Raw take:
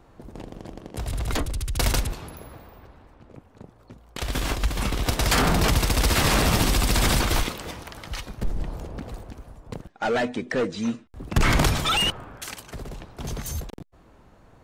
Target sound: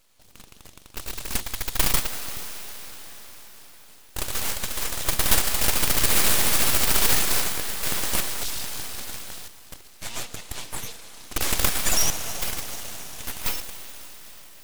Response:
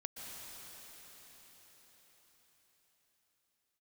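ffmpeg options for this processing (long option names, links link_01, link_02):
-filter_complex "[0:a]asplit=2[link_01][link_02];[1:a]atrim=start_sample=2205[link_03];[link_02][link_03]afir=irnorm=-1:irlink=0,volume=-2dB[link_04];[link_01][link_04]amix=inputs=2:normalize=0,asettb=1/sr,asplit=3[link_05][link_06][link_07];[link_05]atrim=end=7.834[link_08];[link_06]atrim=start=7.83:end=9.48,asetpts=PTS-STARTPTS,afade=type=in:duration=0.004:curve=qsin,afade=type=out:start_time=1.646:duration=0.004:curve=qsin,acontrast=80[link_09];[link_07]atrim=start=9.476[link_10];[link_08][link_09]acrossfade=duration=0.004:curve1=hsin:curve2=qsin[link_11];[link_11][link_10]acrossfade=duration=0.004:curve1=qsin:curve2=hsin,aexciter=amount=11.9:drive=7.5:freq=2500,aeval=exprs='abs(val(0))':channel_layout=same,volume=-17.5dB"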